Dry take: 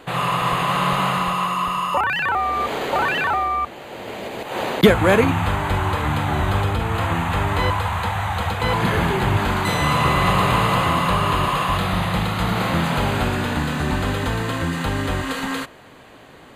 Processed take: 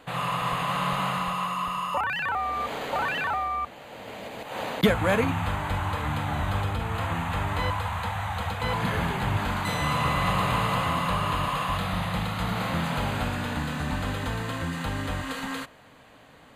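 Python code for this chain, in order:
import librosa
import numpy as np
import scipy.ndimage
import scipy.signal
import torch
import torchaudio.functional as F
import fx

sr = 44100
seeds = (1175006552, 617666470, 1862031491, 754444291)

y = fx.peak_eq(x, sr, hz=370.0, db=-12.0, octaves=0.22)
y = F.gain(torch.from_numpy(y), -7.0).numpy()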